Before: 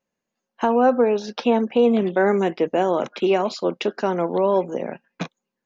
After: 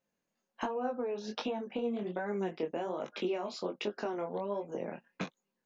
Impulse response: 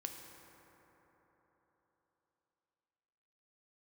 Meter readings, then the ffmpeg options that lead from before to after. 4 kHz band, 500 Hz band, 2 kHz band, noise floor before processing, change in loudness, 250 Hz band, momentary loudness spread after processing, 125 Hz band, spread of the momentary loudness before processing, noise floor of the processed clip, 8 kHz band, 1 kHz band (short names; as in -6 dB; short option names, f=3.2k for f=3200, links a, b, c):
-10.5 dB, -16.0 dB, -14.0 dB, -83 dBFS, -16.0 dB, -15.5 dB, 6 LU, -14.0 dB, 13 LU, under -85 dBFS, n/a, -16.0 dB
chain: -af "acompressor=threshold=-30dB:ratio=6,flanger=delay=19:depth=6.4:speed=1.3"